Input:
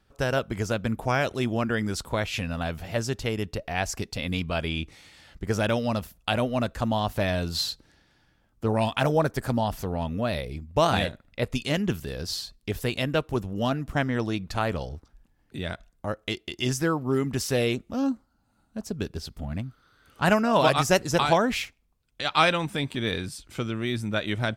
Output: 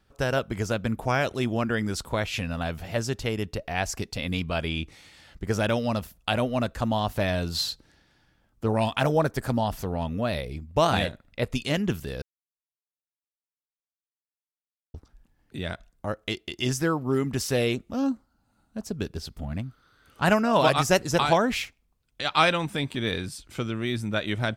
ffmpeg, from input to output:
-filter_complex "[0:a]asplit=3[s0][s1][s2];[s0]atrim=end=12.22,asetpts=PTS-STARTPTS,afade=t=out:st=12.216:d=0.004:c=hsin[s3];[s1]atrim=start=12.22:end=14.94,asetpts=PTS-STARTPTS,volume=0[s4];[s2]atrim=start=14.94,asetpts=PTS-STARTPTS,afade=t=in:d=0.004:c=hsin[s5];[s3][s4][s5]concat=n=3:v=0:a=1"

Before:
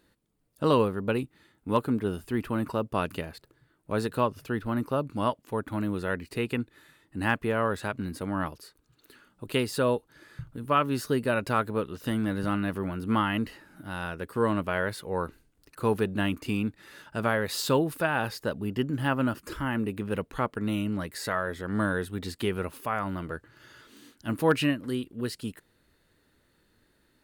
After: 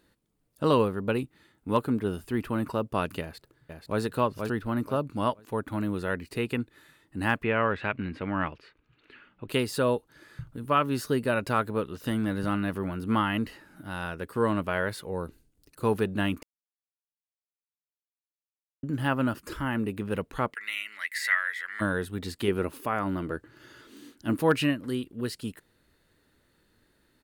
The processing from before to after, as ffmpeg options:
-filter_complex "[0:a]asplit=2[s0][s1];[s1]afade=t=in:st=3.21:d=0.01,afade=t=out:st=4.01:d=0.01,aecho=0:1:480|960|1440:0.595662|0.148916|0.0372289[s2];[s0][s2]amix=inputs=2:normalize=0,asettb=1/sr,asplit=3[s3][s4][s5];[s3]atrim=end=7.434[s6];[s4]atrim=start=7.43:end=9.49,asetpts=PTS-STARTPTS,afade=t=in:d=0.004:c=qsin,afade=t=out:st=2.056:d=0.004:c=qsin,lowpass=f=2500:t=q:w=2.8[s7];[s5]atrim=start=9.486[s8];[s6][s7]acrossfade=d=0.004:c1=hsin:c2=qsin[s9];[s9][s8]acrossfade=d=0.004:c1=qsin:c2=hsin,asettb=1/sr,asplit=3[s10][s11][s12];[s10]atrim=end=15.114[s13];[s11]atrim=start=15.11:end=15.83,asetpts=PTS-STARTPTS,afade=t=in:d=0.004:c=qsin,afade=t=out:st=0.716:d=0.004:c=qsin,equalizer=f=1400:t=o:w=2.2:g=-9[s14];[s12]atrim=start=15.826[s15];[s13][s14]acrossfade=d=0.004:c1=hsin:c2=qsin[s16];[s16][s15]acrossfade=d=0.004:c1=qsin:c2=hsin,asplit=3[s17][s18][s19];[s17]afade=t=out:st=20.53:d=0.02[s20];[s18]highpass=f=2000:t=q:w=8,afade=t=in:st=20.53:d=0.02,afade=t=out:st=21.8:d=0.02[s21];[s19]afade=t=in:st=21.8:d=0.02[s22];[s20][s21][s22]amix=inputs=3:normalize=0,asettb=1/sr,asplit=3[s23][s24][s25];[s23]atrim=end=22.484[s26];[s24]atrim=start=22.48:end=24.37,asetpts=PTS-STARTPTS,afade=t=in:d=0.004:c=qsin,afade=t=out:st=1.886:d=0.004:c=qsin,equalizer=f=320:w=1.5:g=7[s27];[s25]atrim=start=24.366[s28];[s26][s27]acrossfade=d=0.004:c1=hsin:c2=qsin[s29];[s29][s28]acrossfade=d=0.004:c1=qsin:c2=hsin,asplit=3[s30][s31][s32];[s30]atrim=end=16.43,asetpts=PTS-STARTPTS,afade=t=out:st=16.426:d=0.004:c=hsin[s33];[s31]atrim=start=16.43:end=18.83,asetpts=PTS-STARTPTS,volume=0[s34];[s32]atrim=start=18.83,asetpts=PTS-STARTPTS,afade=t=in:d=0.004:c=hsin[s35];[s33][s34][s35]concat=n=3:v=0:a=1"

